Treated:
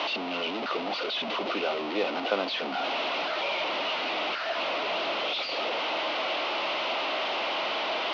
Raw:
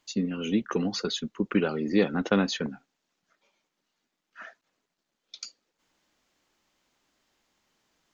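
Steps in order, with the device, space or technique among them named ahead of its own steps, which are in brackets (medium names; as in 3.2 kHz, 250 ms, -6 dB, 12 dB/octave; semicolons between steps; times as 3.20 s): digital answering machine (band-pass 370–3000 Hz; one-bit delta coder 32 kbps, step -23 dBFS; cabinet simulation 350–4000 Hz, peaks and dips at 440 Hz -3 dB, 640 Hz +7 dB, 1.7 kHz -10 dB, 2.8 kHz +4 dB)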